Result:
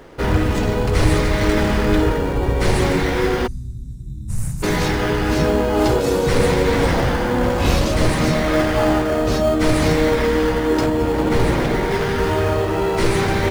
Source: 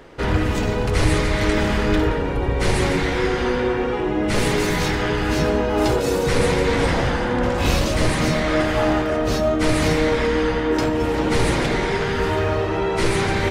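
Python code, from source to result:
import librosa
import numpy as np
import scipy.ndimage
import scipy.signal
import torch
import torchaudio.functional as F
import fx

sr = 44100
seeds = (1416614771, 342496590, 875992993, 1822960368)

p1 = fx.cheby2_bandstop(x, sr, low_hz=620.0, high_hz=2000.0, order=4, stop_db=80, at=(3.46, 4.62), fade=0.02)
p2 = fx.high_shelf(p1, sr, hz=3800.0, db=-8.5, at=(10.86, 11.91))
p3 = fx.sample_hold(p2, sr, seeds[0], rate_hz=3800.0, jitter_pct=0)
y = p2 + (p3 * 10.0 ** (-9.5 / 20.0))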